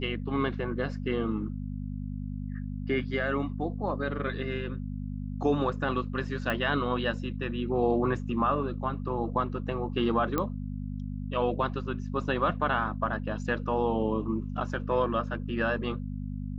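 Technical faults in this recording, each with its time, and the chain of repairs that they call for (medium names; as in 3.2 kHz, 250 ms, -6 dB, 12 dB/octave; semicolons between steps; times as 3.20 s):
hum 50 Hz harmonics 5 -35 dBFS
6.50 s: pop -17 dBFS
10.38 s: pop -14 dBFS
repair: de-click; de-hum 50 Hz, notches 5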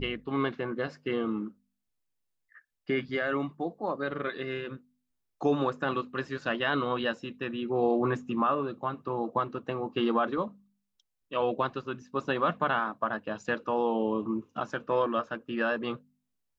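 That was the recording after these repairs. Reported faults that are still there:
10.38 s: pop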